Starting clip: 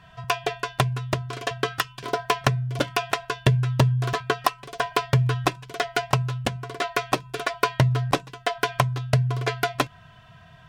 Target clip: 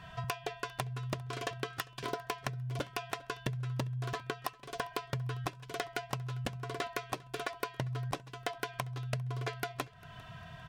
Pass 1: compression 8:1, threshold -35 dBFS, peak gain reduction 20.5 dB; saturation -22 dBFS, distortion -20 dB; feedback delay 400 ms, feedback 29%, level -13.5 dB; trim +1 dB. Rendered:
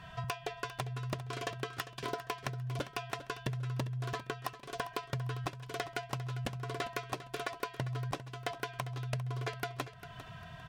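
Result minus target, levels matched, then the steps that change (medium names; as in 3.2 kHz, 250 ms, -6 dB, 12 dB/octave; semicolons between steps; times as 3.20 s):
saturation: distortion +17 dB; echo-to-direct +9.5 dB
change: saturation -11 dBFS, distortion -37 dB; change: feedback delay 400 ms, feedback 29%, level -23 dB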